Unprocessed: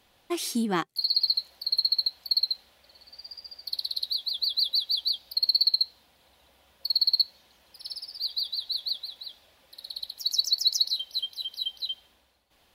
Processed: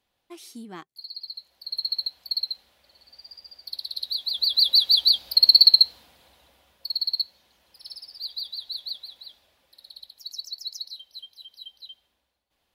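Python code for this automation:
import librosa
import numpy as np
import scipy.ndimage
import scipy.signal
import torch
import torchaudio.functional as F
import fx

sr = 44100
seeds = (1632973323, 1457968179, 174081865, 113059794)

y = fx.gain(x, sr, db=fx.line((1.27, -13.5), (1.9, -2.5), (3.86, -2.5), (4.83, 9.0), (5.82, 9.0), (6.9, -3.0), (9.25, -3.0), (10.44, -11.0)))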